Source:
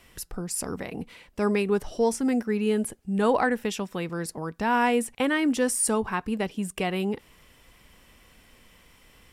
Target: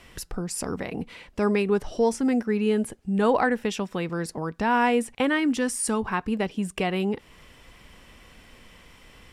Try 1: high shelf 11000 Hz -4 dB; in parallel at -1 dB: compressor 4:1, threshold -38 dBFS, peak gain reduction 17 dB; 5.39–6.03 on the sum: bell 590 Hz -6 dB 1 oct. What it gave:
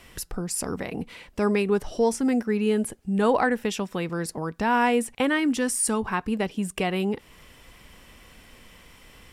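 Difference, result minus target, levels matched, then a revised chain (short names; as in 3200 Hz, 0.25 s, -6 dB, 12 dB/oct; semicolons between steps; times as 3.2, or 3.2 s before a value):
8000 Hz band +3.0 dB
high shelf 11000 Hz -14.5 dB; in parallel at -1 dB: compressor 4:1, threshold -38 dBFS, peak gain reduction 17 dB; 5.39–6.03 on the sum: bell 590 Hz -6 dB 1 oct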